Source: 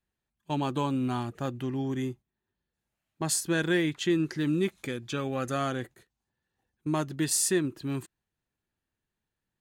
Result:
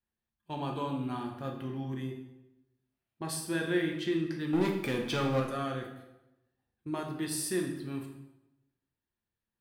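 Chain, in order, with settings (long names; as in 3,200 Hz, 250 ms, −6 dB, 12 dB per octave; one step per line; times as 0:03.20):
parametric band 6,900 Hz −14.5 dB 0.3 octaves
0:04.53–0:05.40: leveller curve on the samples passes 3
delay with a band-pass on its return 126 ms, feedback 42%, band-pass 760 Hz, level −18.5 dB
on a send at −1 dB: convolution reverb RT60 0.90 s, pre-delay 4 ms
on the sum: level −7.5 dB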